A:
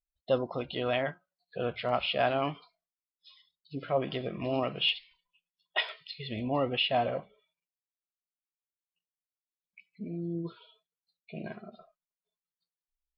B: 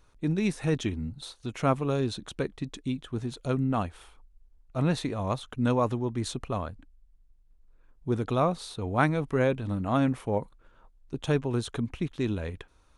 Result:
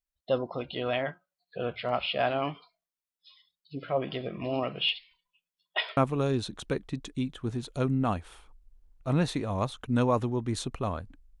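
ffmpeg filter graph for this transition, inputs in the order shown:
-filter_complex "[0:a]apad=whole_dur=11.4,atrim=end=11.4,atrim=end=5.972[s0];[1:a]atrim=start=1.658:end=7.09[s1];[s0][s1]acrossfade=d=0.004:c1=hsin:c2=hsin"

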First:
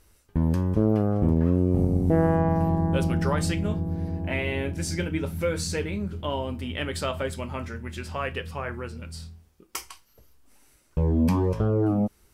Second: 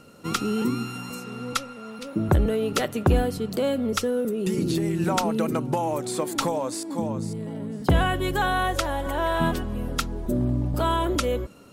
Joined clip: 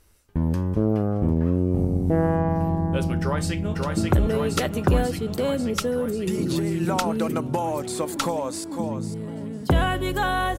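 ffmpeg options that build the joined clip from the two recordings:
-filter_complex "[0:a]apad=whole_dur=10.58,atrim=end=10.58,atrim=end=3.752[s0];[1:a]atrim=start=1.938:end=8.77[s1];[s0][s1]acrossfade=d=0.004:c1=hsin:c2=hsin,asplit=2[s2][s3];[s3]afade=t=in:st=3.21:d=0.01,afade=t=out:st=3.75:d=0.01,aecho=0:1:540|1080|1620|2160|2700|3240|3780|4320|4860|5400|5940|6480:0.749894|0.562421|0.421815|0.316362|0.237271|0.177953|0.133465|0.100099|0.0750741|0.0563056|0.0422292|0.0316719[s4];[s2][s4]amix=inputs=2:normalize=0"

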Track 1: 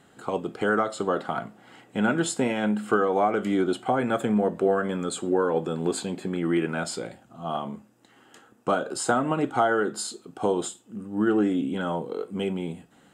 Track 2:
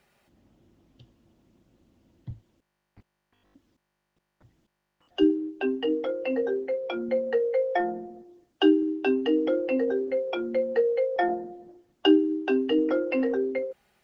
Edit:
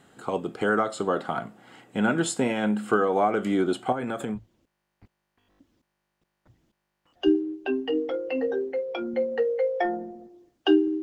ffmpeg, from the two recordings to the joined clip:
-filter_complex "[0:a]asettb=1/sr,asplit=3[s0][s1][s2];[s0]atrim=end=3.924[s3];[s1]atrim=start=3.92:end=4.39,asetpts=PTS-STARTPTS,afade=t=in:d=0.004:c=qsin,afade=t=out:st=0.466:d=0.004:c=qsin,acompressor=threshold=0.0501:ratio=6:attack=3.2:release=140:knee=1:detection=peak[s4];[s2]atrim=start=4.386[s5];[s3][s4]acrossfade=d=0.004:c1=hsin:c2=qsin[s6];[s6][s5]acrossfade=d=0.004:c1=qsin:c2=hsin,apad=whole_dur=11.02,atrim=end=11.02,atrim=end=4.39,asetpts=PTS-STARTPTS[s7];[1:a]atrim=start=2.28:end=8.97,asetpts=PTS-STARTPTS[s8];[s7][s8]acrossfade=d=0.06:c1=tri:c2=tri"

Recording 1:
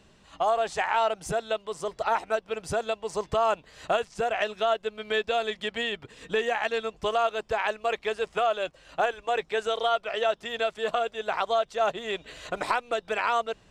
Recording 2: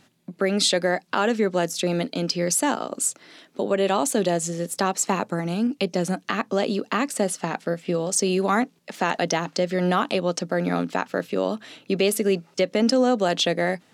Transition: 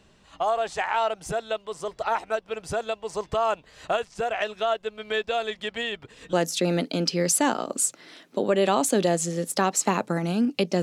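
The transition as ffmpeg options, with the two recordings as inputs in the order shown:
-filter_complex "[0:a]apad=whole_dur=10.82,atrim=end=10.82,atrim=end=6.332[s0];[1:a]atrim=start=1.548:end=6.04[s1];[s0][s1]acrossfade=d=0.004:c1=hsin:c2=hsin"

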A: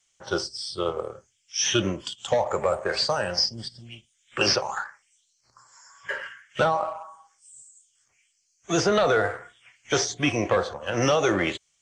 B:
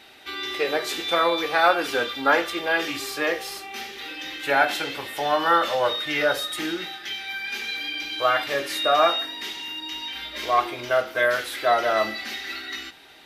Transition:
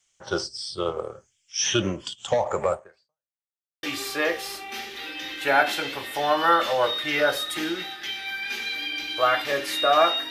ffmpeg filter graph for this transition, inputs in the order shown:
-filter_complex "[0:a]apad=whole_dur=10.3,atrim=end=10.3,asplit=2[s0][s1];[s0]atrim=end=3.38,asetpts=PTS-STARTPTS,afade=t=out:st=2.72:d=0.66:c=exp[s2];[s1]atrim=start=3.38:end=3.83,asetpts=PTS-STARTPTS,volume=0[s3];[1:a]atrim=start=2.85:end=9.32,asetpts=PTS-STARTPTS,afade=t=in:d=0.004:c=hsin[s4];[s2][s3][s4]concat=n=3:v=0:a=1"

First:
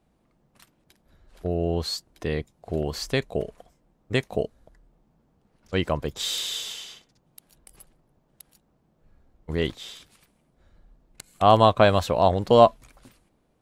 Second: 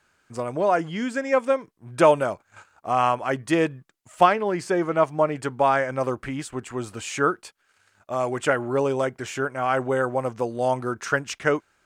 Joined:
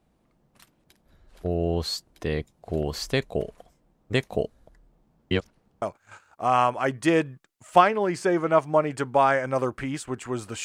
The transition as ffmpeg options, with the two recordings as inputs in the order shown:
-filter_complex "[0:a]apad=whole_dur=10.64,atrim=end=10.64,asplit=2[s0][s1];[s0]atrim=end=5.312[s2];[s1]atrim=start=5.308:end=5.822,asetpts=PTS-STARTPTS,areverse[s3];[1:a]atrim=start=2.268:end=7.09[s4];[s2][s3]acrossfade=d=0.004:c1=hsin:c2=hsin[s5];[s5][s4]acrossfade=d=0.004:c1=hsin:c2=hsin"

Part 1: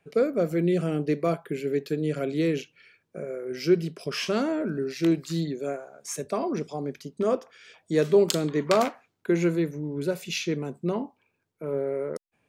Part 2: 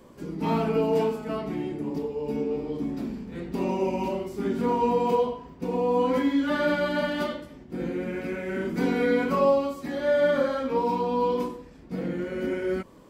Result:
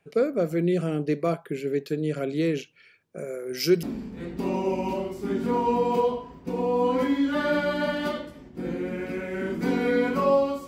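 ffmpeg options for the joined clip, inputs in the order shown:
-filter_complex "[0:a]asettb=1/sr,asplit=3[s0][s1][s2];[s0]atrim=end=3.184[s3];[s1]atrim=start=3.18:end=3.83,asetpts=PTS-STARTPTS,afade=t=in:d=0.004:c=qsin,afade=t=out:st=0.646:d=0.004:c=qsin,aemphasis=mode=production:type=75kf[s4];[s2]atrim=start=3.826[s5];[s3][s4]acrossfade=d=0.004:c1=hsin:c2=qsin[s6];[s6][s5]acrossfade=d=0.004:c1=qsin:c2=hsin,apad=whole_dur=10.67,atrim=end=10.67,atrim=end=3.832[s7];[1:a]atrim=start=2.978:end=9.82[s8];[s7][s8]acrossfade=d=0.004:c1=hsin:c2=hsin"

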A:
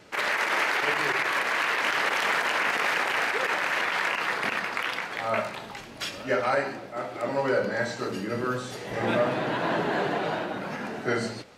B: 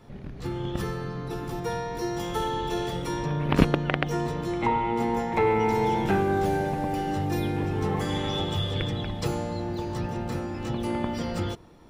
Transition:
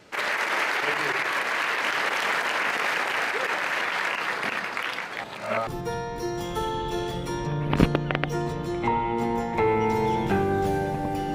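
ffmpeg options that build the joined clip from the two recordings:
-filter_complex "[0:a]apad=whole_dur=11.34,atrim=end=11.34,asplit=2[s0][s1];[s0]atrim=end=5.242[s2];[s1]atrim=start=5.238:end=5.672,asetpts=PTS-STARTPTS,areverse[s3];[1:a]atrim=start=1.458:end=7.13[s4];[s2][s3]acrossfade=d=0.004:c1=hsin:c2=hsin[s5];[s5][s4]acrossfade=d=0.004:c1=hsin:c2=hsin"

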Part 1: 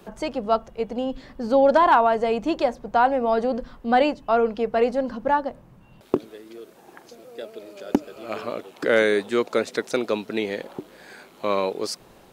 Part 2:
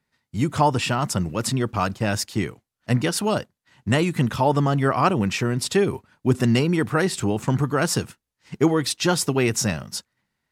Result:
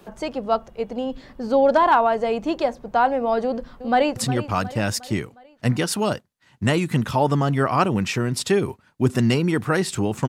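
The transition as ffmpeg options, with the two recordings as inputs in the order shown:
-filter_complex "[0:a]apad=whole_dur=10.28,atrim=end=10.28,atrim=end=4.162[s0];[1:a]atrim=start=1.408:end=7.53[s1];[s0][s1]acrossfade=d=0.004:c1=hsin:c2=hsin,asplit=2[s2][s3];[s3]afade=t=in:st=3.44:d=0.01,afade=t=out:st=4.16:d=0.01,aecho=0:1:360|720|1080|1440|1800:0.223872|0.111936|0.055968|0.027984|0.013992[s4];[s2][s4]amix=inputs=2:normalize=0"

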